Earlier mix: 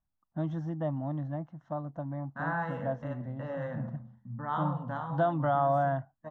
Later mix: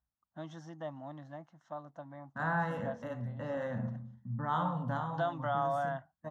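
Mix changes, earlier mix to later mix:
first voice: add high-pass 1.2 kHz 6 dB/octave; master: add tone controls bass +3 dB, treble +11 dB

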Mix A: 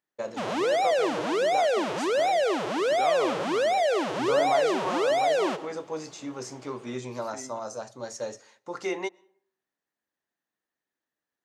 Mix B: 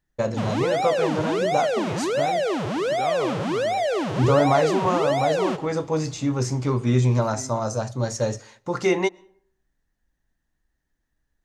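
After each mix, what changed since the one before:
first voice +8.0 dB; master: remove high-pass 320 Hz 12 dB/octave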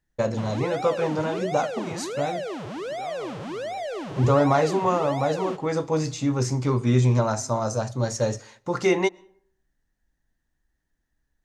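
second voice -11.5 dB; background -8.0 dB

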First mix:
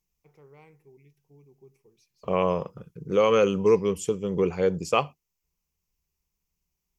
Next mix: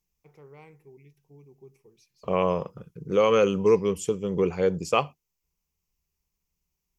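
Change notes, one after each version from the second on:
first voice +3.5 dB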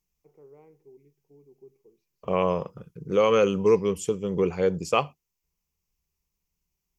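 first voice: add band-pass filter 390 Hz, Q 1.2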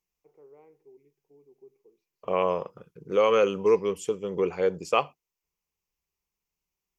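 master: add tone controls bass -11 dB, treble -5 dB

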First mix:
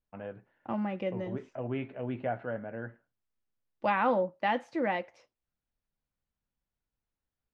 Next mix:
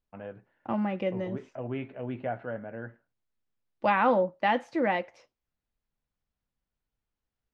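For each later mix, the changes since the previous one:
second voice +3.5 dB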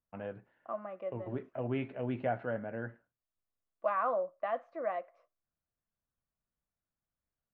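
second voice: add two resonant band-passes 870 Hz, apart 0.74 oct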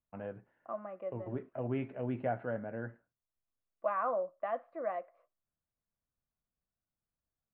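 master: add distance through air 360 m

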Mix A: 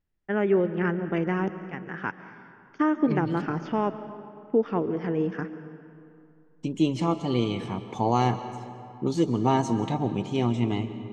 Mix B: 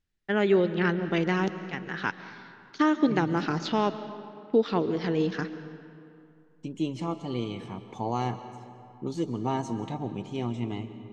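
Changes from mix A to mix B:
first voice: remove boxcar filter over 11 samples; second voice -6.5 dB

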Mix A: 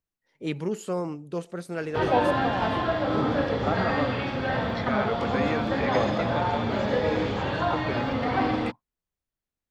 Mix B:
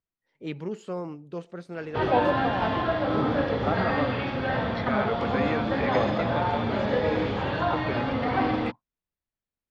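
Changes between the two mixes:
first voice -4.0 dB; master: add low-pass 4.6 kHz 12 dB/octave

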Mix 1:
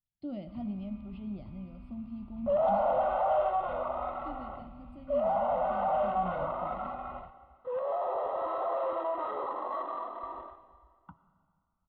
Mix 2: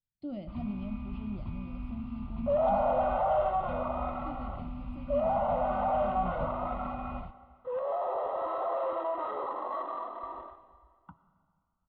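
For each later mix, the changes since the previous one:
first sound +11.0 dB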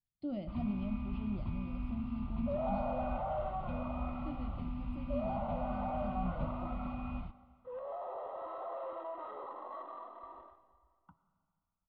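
second sound -10.0 dB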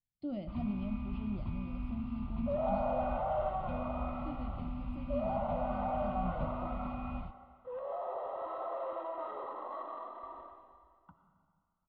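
second sound: send +9.5 dB

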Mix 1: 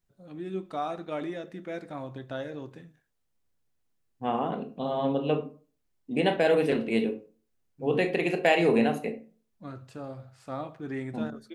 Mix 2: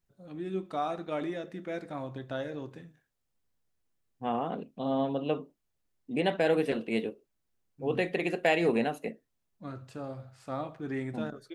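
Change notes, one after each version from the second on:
reverb: off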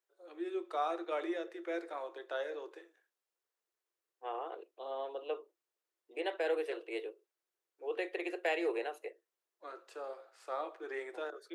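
second voice -6.0 dB; master: add rippled Chebyshev high-pass 330 Hz, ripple 3 dB

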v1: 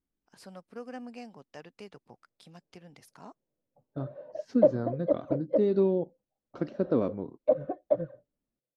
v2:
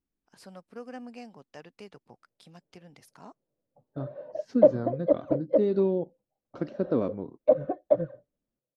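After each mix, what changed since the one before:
background +3.5 dB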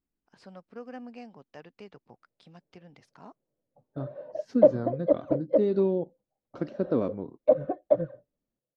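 first voice: add distance through air 120 m

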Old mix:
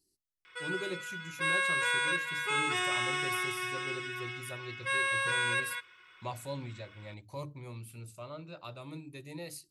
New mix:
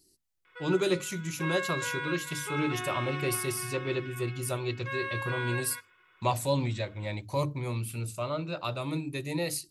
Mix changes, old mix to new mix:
speech +11.5 dB; background: add tape spacing loss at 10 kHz 29 dB

